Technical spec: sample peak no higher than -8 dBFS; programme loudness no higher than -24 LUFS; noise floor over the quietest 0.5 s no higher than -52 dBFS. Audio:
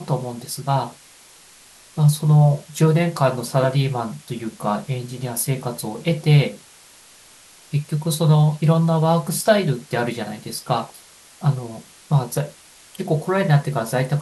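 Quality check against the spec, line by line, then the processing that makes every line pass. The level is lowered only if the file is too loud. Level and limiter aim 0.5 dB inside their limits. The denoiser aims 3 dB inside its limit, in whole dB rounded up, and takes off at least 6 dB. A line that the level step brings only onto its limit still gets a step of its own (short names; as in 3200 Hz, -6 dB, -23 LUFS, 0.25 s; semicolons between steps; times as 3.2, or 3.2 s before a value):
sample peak -4.0 dBFS: fail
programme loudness -20.5 LUFS: fail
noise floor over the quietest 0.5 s -48 dBFS: fail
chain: denoiser 6 dB, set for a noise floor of -48 dBFS; gain -4 dB; limiter -8.5 dBFS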